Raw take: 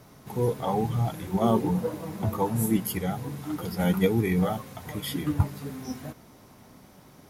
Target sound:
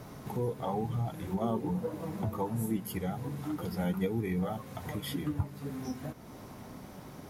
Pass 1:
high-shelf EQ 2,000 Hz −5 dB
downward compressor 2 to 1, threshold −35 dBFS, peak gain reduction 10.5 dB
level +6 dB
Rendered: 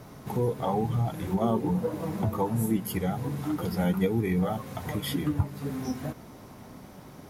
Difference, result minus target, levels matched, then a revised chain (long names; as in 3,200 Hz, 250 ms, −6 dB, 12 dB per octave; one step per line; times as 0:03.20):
downward compressor: peak gain reduction −6 dB
high-shelf EQ 2,000 Hz −5 dB
downward compressor 2 to 1, threshold −46.5 dBFS, peak gain reduction 16 dB
level +6 dB